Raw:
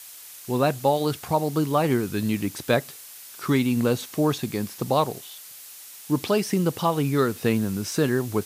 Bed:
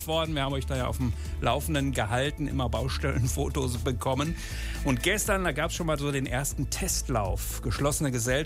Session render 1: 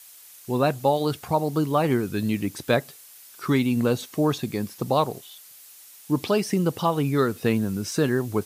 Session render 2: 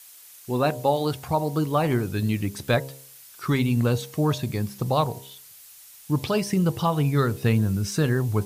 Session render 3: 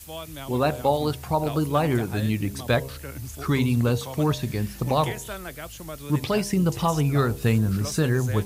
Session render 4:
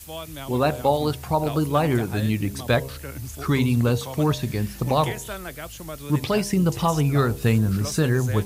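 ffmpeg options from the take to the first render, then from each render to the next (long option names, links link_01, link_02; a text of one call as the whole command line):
ffmpeg -i in.wav -af "afftdn=noise_reduction=6:noise_floor=-43" out.wav
ffmpeg -i in.wav -af "bandreject=frequency=67.43:width_type=h:width=4,bandreject=frequency=134.86:width_type=h:width=4,bandreject=frequency=202.29:width_type=h:width=4,bandreject=frequency=269.72:width_type=h:width=4,bandreject=frequency=337.15:width_type=h:width=4,bandreject=frequency=404.58:width_type=h:width=4,bandreject=frequency=472.01:width_type=h:width=4,bandreject=frequency=539.44:width_type=h:width=4,bandreject=frequency=606.87:width_type=h:width=4,bandreject=frequency=674.3:width_type=h:width=4,bandreject=frequency=741.73:width_type=h:width=4,bandreject=frequency=809.16:width_type=h:width=4,bandreject=frequency=876.59:width_type=h:width=4,bandreject=frequency=944.02:width_type=h:width=4,bandreject=frequency=1011.45:width_type=h:width=4,asubboost=boost=5:cutoff=120" out.wav
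ffmpeg -i in.wav -i bed.wav -filter_complex "[1:a]volume=-9.5dB[link_01];[0:a][link_01]amix=inputs=2:normalize=0" out.wav
ffmpeg -i in.wav -af "volume=1.5dB" out.wav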